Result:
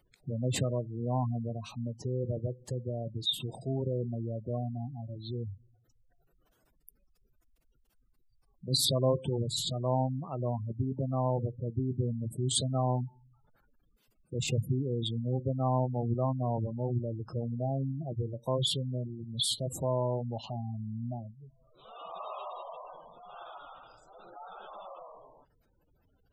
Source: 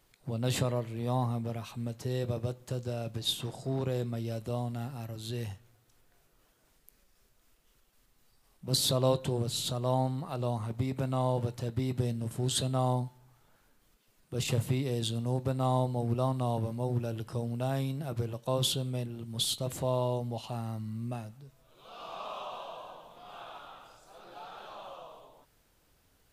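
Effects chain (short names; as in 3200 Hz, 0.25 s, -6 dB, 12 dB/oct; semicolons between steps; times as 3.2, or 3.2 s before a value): spectral gate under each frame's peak -15 dB strong; high shelf 5600 Hz +5.5 dB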